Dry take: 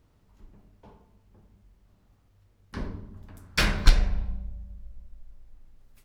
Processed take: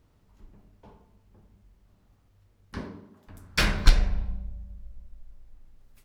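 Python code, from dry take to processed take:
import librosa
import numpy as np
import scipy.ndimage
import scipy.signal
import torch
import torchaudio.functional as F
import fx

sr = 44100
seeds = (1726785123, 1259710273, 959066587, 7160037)

y = fx.highpass(x, sr, hz=fx.line((2.79, 120.0), (3.27, 340.0)), slope=12, at=(2.79, 3.27), fade=0.02)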